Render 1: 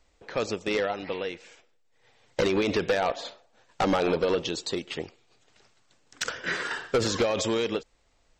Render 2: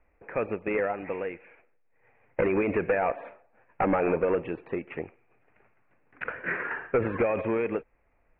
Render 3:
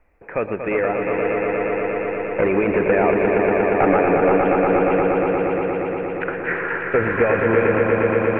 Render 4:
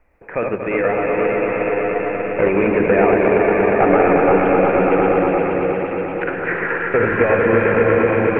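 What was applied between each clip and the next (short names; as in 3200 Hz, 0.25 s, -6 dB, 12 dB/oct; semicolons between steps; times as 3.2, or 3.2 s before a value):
Chebyshev low-pass 2500 Hz, order 6
swelling echo 0.118 s, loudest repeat 5, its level -5.5 dB; gain +6 dB
reverse delay 0.106 s, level -3 dB; gain +1 dB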